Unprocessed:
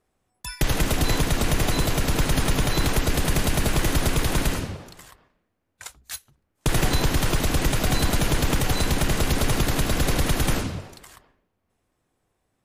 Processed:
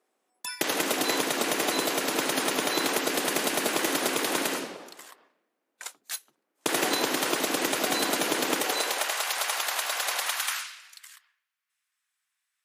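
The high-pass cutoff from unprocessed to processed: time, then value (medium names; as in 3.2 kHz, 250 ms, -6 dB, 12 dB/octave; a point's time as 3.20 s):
high-pass 24 dB/octave
8.53 s 280 Hz
9.20 s 720 Hz
10.19 s 720 Hz
10.75 s 1.5 kHz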